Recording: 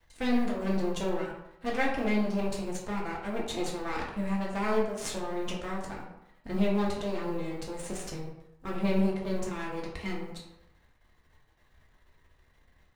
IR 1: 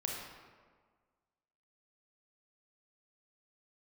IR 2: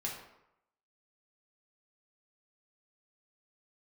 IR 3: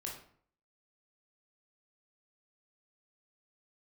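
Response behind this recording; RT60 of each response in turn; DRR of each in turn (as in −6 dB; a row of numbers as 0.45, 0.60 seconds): 2; 1.6, 0.85, 0.55 seconds; −1.5, −3.5, −2.0 decibels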